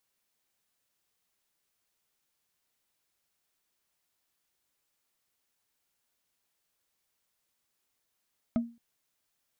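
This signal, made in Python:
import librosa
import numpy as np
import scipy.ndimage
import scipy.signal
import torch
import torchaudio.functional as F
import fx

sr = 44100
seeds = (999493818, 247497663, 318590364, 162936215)

y = fx.strike_wood(sr, length_s=0.22, level_db=-21.0, body='bar', hz=234.0, decay_s=0.32, tilt_db=8.5, modes=5)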